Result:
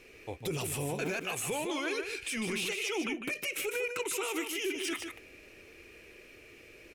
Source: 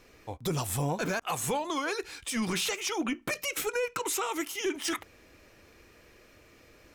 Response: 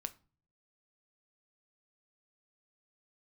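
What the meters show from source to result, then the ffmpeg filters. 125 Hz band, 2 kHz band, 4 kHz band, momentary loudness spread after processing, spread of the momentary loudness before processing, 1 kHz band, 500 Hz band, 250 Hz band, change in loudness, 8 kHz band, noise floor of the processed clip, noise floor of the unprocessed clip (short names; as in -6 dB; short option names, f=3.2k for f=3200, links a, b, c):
-5.5 dB, 0.0 dB, -2.0 dB, 20 LU, 4 LU, -7.0 dB, -2.0 dB, -3.5 dB, -2.5 dB, -3.5 dB, -55 dBFS, -58 dBFS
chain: -af "equalizer=f=400:t=o:w=0.67:g=9,equalizer=f=1k:t=o:w=0.67:g=-4,equalizer=f=2.5k:t=o:w=0.67:g=12,equalizer=f=10k:t=o:w=0.67:g=6,alimiter=limit=-23.5dB:level=0:latency=1:release=48,aecho=1:1:152:0.447,volume=-3dB"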